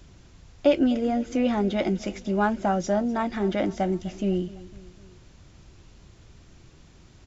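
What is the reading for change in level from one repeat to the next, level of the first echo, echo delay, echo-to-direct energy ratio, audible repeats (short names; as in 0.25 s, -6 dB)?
-5.0 dB, -19.0 dB, 0.252 s, -17.5 dB, 3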